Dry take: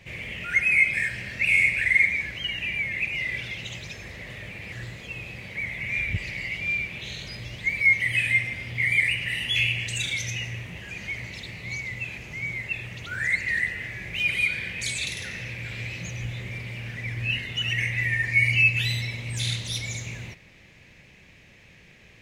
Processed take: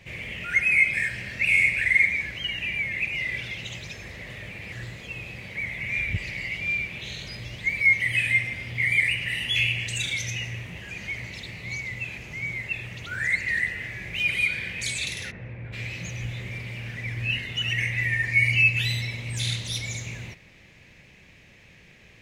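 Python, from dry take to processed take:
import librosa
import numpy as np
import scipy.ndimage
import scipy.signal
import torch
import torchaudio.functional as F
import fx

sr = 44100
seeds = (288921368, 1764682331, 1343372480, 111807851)

y = fx.lowpass(x, sr, hz=1100.0, slope=12, at=(15.3, 15.72), fade=0.02)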